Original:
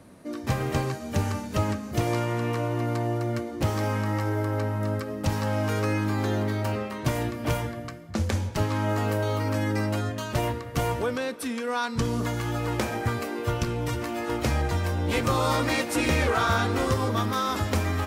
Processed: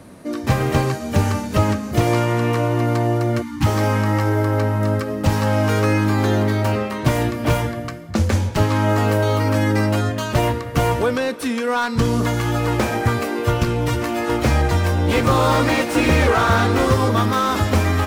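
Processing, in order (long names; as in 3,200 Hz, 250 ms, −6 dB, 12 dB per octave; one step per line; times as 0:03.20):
time-frequency box erased 0:03.42–0:03.66, 340–790 Hz
slew-rate limiting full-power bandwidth 89 Hz
level +8.5 dB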